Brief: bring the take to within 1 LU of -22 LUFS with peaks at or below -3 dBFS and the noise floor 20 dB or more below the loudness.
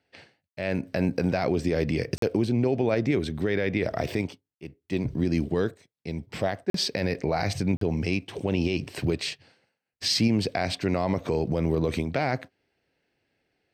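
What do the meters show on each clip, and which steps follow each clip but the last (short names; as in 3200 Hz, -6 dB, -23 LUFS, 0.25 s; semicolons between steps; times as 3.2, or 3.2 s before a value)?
dropouts 3; longest dropout 43 ms; loudness -27.5 LUFS; peak -11.5 dBFS; loudness target -22.0 LUFS
-> interpolate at 2.18/6.7/7.77, 43 ms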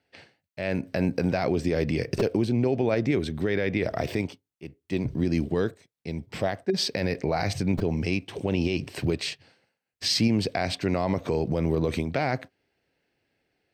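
dropouts 0; loudness -27.0 LUFS; peak -11.5 dBFS; loudness target -22.0 LUFS
-> gain +5 dB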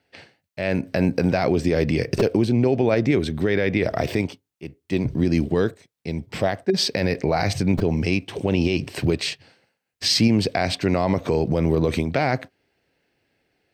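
loudness -22.0 LUFS; peak -6.5 dBFS; noise floor -78 dBFS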